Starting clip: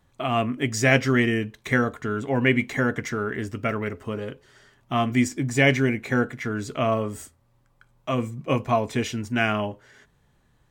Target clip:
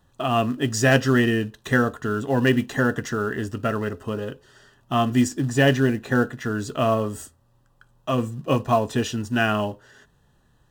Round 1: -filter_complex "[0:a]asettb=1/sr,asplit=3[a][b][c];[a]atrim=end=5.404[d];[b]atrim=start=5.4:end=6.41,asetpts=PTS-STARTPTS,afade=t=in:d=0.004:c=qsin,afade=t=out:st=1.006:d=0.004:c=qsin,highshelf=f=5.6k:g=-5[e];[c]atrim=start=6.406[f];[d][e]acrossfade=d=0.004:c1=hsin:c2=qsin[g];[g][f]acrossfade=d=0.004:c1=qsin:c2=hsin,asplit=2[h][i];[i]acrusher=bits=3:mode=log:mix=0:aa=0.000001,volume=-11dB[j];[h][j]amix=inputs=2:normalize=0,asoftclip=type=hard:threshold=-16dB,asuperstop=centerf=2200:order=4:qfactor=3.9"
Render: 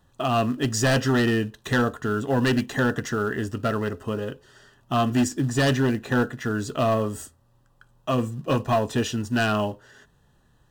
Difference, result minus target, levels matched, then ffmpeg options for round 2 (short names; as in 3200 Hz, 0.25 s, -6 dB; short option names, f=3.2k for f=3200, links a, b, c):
hard clip: distortion +26 dB
-filter_complex "[0:a]asettb=1/sr,asplit=3[a][b][c];[a]atrim=end=5.404[d];[b]atrim=start=5.4:end=6.41,asetpts=PTS-STARTPTS,afade=t=in:d=0.004:c=qsin,afade=t=out:st=1.006:d=0.004:c=qsin,highshelf=f=5.6k:g=-5[e];[c]atrim=start=6.406[f];[d][e]acrossfade=d=0.004:c1=hsin:c2=qsin[g];[g][f]acrossfade=d=0.004:c1=qsin:c2=hsin,asplit=2[h][i];[i]acrusher=bits=3:mode=log:mix=0:aa=0.000001,volume=-11dB[j];[h][j]amix=inputs=2:normalize=0,asoftclip=type=hard:threshold=-5dB,asuperstop=centerf=2200:order=4:qfactor=3.9"